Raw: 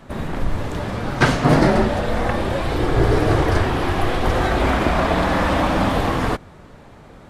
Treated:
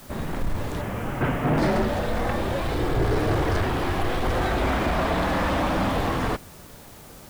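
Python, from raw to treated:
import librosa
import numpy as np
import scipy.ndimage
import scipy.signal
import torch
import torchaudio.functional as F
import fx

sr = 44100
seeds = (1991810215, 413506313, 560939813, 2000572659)

p1 = fx.cvsd(x, sr, bps=16000, at=(0.81, 1.58))
p2 = fx.quant_dither(p1, sr, seeds[0], bits=6, dither='triangular')
p3 = p1 + (p2 * librosa.db_to_amplitude(-7.0))
p4 = 10.0 ** (-9.5 / 20.0) * np.tanh(p3 / 10.0 ** (-9.5 / 20.0))
y = p4 * librosa.db_to_amplitude(-6.5)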